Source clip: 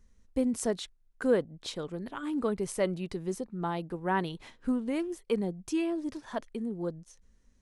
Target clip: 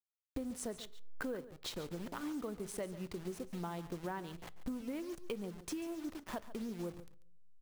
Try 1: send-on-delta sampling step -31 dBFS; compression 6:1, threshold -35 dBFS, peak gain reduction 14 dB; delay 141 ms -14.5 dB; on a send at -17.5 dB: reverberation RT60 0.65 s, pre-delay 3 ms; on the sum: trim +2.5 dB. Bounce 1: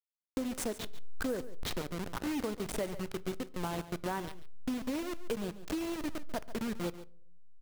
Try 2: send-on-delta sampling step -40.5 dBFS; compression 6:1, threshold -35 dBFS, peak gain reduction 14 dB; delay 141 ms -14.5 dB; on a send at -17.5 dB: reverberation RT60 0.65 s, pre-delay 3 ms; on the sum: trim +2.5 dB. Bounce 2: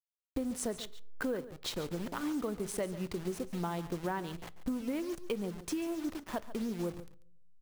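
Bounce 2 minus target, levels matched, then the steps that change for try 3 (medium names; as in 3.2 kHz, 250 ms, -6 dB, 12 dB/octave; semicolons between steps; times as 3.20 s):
compression: peak gain reduction -6 dB
change: compression 6:1, threshold -42 dBFS, peak gain reduction 20 dB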